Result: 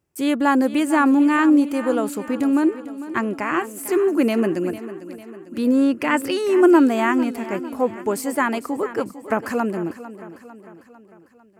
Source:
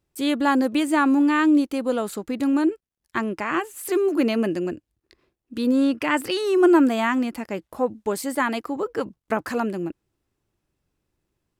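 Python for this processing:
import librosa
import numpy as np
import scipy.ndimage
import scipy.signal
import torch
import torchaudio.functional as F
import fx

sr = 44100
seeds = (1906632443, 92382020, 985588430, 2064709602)

p1 = scipy.signal.sosfilt(scipy.signal.butter(2, 70.0, 'highpass', fs=sr, output='sos'), x)
p2 = fx.peak_eq(p1, sr, hz=3800.0, db=-8.5, octaves=0.55)
p3 = p2 + fx.echo_feedback(p2, sr, ms=450, feedback_pct=53, wet_db=-14.5, dry=0)
y = F.gain(torch.from_numpy(p3), 2.5).numpy()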